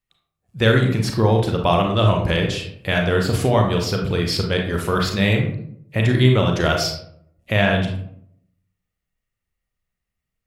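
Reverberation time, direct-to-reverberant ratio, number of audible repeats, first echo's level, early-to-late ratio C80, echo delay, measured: 0.65 s, 1.5 dB, none, none, 9.0 dB, none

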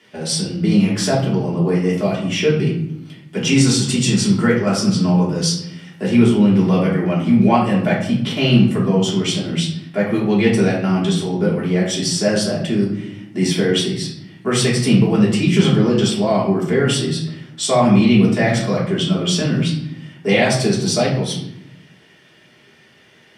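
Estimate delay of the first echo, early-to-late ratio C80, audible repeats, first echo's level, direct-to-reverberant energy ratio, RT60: none, 8.5 dB, none, none, -6.0 dB, 0.75 s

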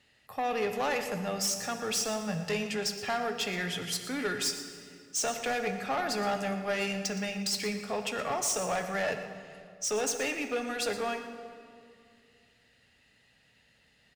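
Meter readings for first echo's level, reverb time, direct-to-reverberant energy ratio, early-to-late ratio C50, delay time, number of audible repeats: -13.5 dB, 2.3 s, 6.0 dB, 7.5 dB, 0.118 s, 1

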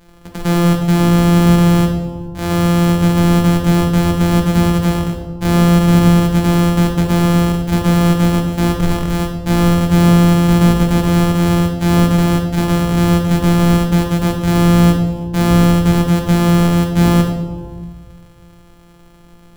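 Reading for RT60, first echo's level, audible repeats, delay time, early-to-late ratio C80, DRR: 1.5 s, none, none, none, 6.5 dB, 1.0 dB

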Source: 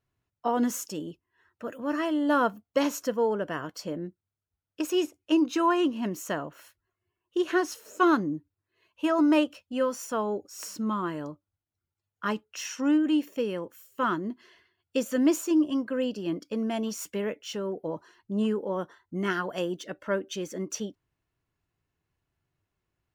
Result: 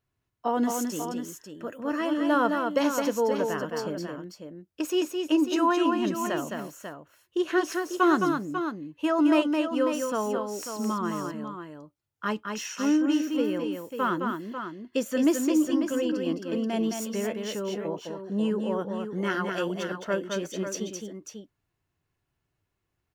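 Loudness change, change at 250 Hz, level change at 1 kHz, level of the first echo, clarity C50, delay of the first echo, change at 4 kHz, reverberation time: +1.0 dB, +1.5 dB, +1.5 dB, -5.0 dB, none, 0.214 s, +1.5 dB, none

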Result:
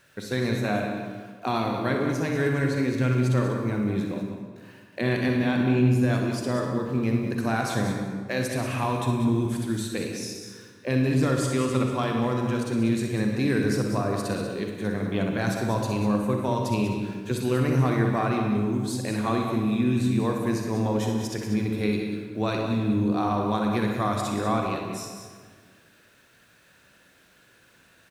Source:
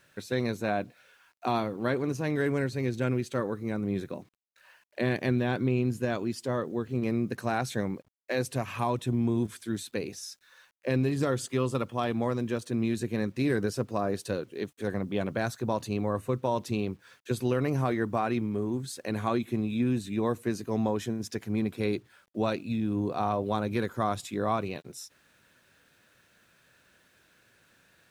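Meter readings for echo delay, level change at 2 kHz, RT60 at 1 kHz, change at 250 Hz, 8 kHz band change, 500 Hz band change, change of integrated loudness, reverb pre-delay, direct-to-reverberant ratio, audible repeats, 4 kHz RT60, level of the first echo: 62 ms, +5.0 dB, 1.6 s, +5.5 dB, +5.0 dB, +2.5 dB, +4.5 dB, 37 ms, 1.0 dB, 2, 1.2 s, -9.5 dB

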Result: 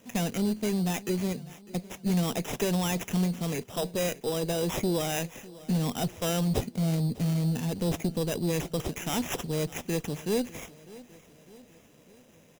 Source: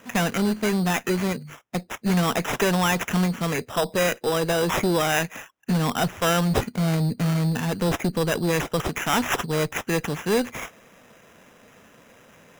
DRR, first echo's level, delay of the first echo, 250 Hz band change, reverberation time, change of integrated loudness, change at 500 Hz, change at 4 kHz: none, -20.0 dB, 0.601 s, -4.5 dB, none, -6.0 dB, -6.5 dB, -7.0 dB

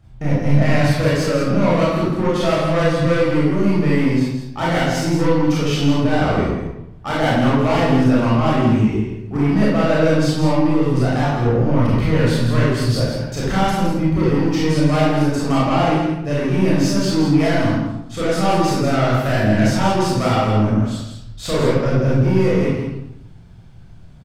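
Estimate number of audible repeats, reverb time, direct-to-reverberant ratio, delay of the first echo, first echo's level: 1, 0.85 s, -8.0 dB, 0.164 s, -6.5 dB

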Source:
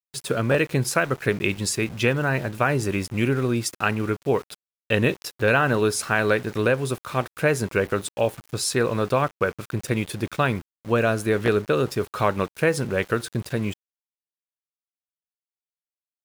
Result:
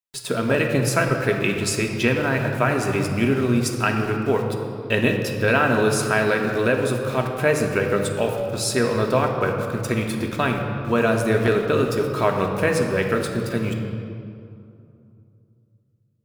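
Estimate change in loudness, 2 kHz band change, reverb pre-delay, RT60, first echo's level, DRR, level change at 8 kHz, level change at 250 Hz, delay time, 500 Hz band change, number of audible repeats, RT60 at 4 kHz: +2.0 dB, +1.5 dB, 3 ms, 2.6 s, none, 2.0 dB, +1.0 dB, +3.5 dB, none, +2.5 dB, none, 1.5 s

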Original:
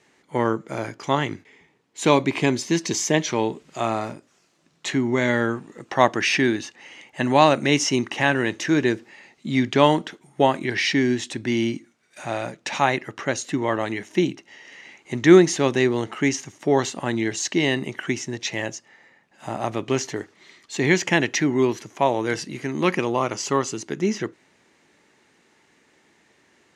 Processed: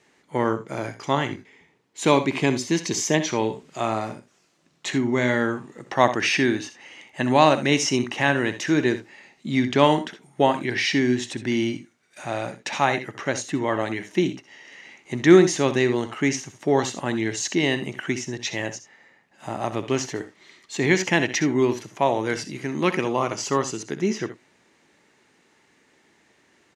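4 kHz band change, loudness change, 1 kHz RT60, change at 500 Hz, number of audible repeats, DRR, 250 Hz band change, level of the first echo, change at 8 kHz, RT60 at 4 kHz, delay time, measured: -0.5 dB, -0.5 dB, none, -0.5 dB, 1, none, -0.5 dB, -13.0 dB, -0.5 dB, none, 64 ms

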